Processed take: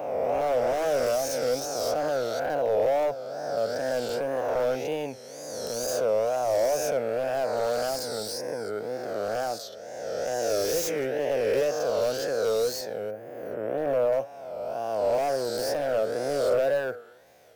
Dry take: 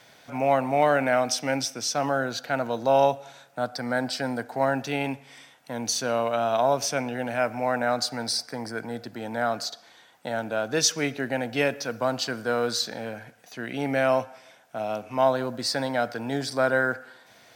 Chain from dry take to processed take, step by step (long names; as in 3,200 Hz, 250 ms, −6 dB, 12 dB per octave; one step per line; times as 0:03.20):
peak hold with a rise ahead of every peak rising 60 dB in 2.05 s
0:13.10–0:14.12: parametric band 5,000 Hz −15 dB 2.4 octaves
soft clipping −12 dBFS, distortion −19 dB
tape wow and flutter 140 cents
wave folding −17.5 dBFS
octave-band graphic EQ 125/250/500/1,000/2,000/4,000/8,000 Hz −5/−9/+9/−9/−7/−10/−6 dB
level −1.5 dB